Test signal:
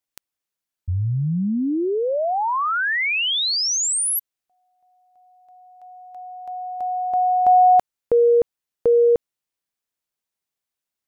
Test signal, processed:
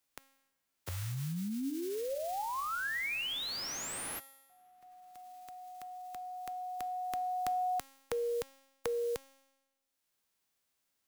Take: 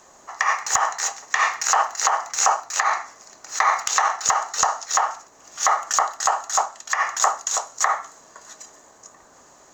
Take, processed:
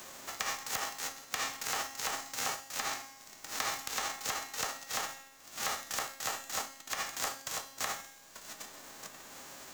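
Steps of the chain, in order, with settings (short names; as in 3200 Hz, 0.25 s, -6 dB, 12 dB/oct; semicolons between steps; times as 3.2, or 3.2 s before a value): spectral whitening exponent 0.3; resonator 270 Hz, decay 0.78 s, mix 70%; three-band squash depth 70%; gain -6 dB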